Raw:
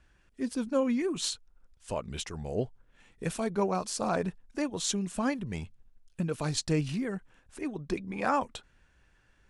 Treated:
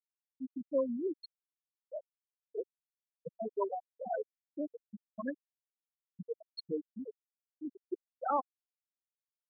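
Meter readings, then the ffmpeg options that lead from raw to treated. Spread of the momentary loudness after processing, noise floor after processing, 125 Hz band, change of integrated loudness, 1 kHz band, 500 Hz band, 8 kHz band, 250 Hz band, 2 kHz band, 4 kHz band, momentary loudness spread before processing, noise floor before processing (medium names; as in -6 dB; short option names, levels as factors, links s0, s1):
16 LU, under -85 dBFS, -23.5 dB, -7.5 dB, -5.0 dB, -5.0 dB, under -40 dB, -10.0 dB, -16.0 dB, -17.0 dB, 10 LU, -66 dBFS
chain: -filter_complex "[0:a]acrossover=split=330[s0][s1];[s0]acompressor=threshold=0.00891:ratio=4[s2];[s2][s1]amix=inputs=2:normalize=0,afftfilt=real='re*gte(hypot(re,im),0.178)':imag='im*gte(hypot(re,im),0.178)':win_size=1024:overlap=0.75,volume=0.841"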